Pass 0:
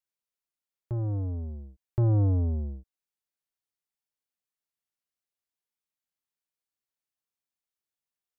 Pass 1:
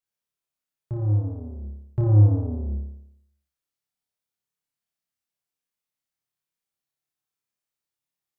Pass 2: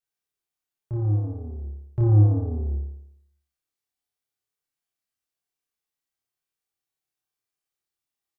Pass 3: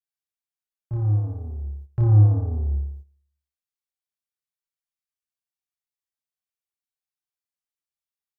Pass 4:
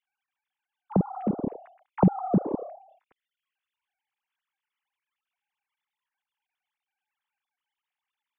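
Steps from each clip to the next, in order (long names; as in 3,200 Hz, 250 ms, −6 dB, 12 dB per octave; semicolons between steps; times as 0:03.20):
parametric band 140 Hz +6 dB 0.77 octaves; flutter between parallel walls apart 4.9 metres, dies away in 0.76 s; level −1.5 dB
double-tracking delay 26 ms −3 dB; level −2 dB
noise gate −41 dBFS, range −12 dB; parametric band 320 Hz −9 dB 1.9 octaves; level +4 dB
three sine waves on the formant tracks; downward compressor 2 to 1, threshold −28 dBFS, peak gain reduction 12.5 dB; level +2.5 dB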